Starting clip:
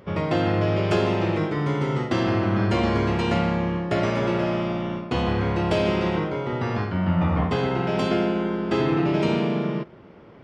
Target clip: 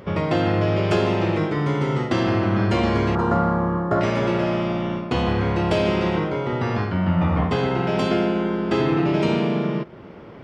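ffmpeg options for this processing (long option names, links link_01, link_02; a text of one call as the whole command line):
ffmpeg -i in.wav -filter_complex "[0:a]asettb=1/sr,asplit=3[link_01][link_02][link_03];[link_01]atrim=end=3.154[link_04];[link_02]atrim=start=3.15:end=4.01,asetpts=PTS-STARTPTS,afade=type=in:duration=0.004:curve=qsin,afade=type=out:start_time=0.856:duration=0.004:curve=qsin,highshelf=frequency=1800:width_type=q:width=3:gain=-11[link_05];[link_03]atrim=start=4.006[link_06];[link_04][link_05]acrossfade=duration=0.004:curve1=hsin:curve2=qsin[link_07];[link_07][link_06]acrossfade=duration=0.004:curve1=qsin:curve2=hsin,asplit=2[link_08][link_09];[link_09]acompressor=threshold=-34dB:ratio=6,volume=1dB[link_10];[link_08][link_10]amix=inputs=2:normalize=0" out.wav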